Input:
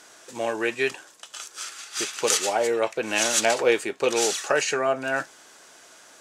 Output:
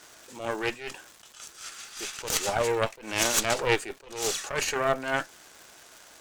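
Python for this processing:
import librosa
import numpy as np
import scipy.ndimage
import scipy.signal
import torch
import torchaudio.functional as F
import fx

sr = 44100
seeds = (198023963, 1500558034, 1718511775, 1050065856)

y = fx.dmg_crackle(x, sr, seeds[0], per_s=420.0, level_db=-36.0)
y = fx.cheby_harmonics(y, sr, harmonics=(4,), levels_db=(-8,), full_scale_db=-4.0)
y = fx.attack_slew(y, sr, db_per_s=110.0)
y = y * librosa.db_to_amplitude(-3.0)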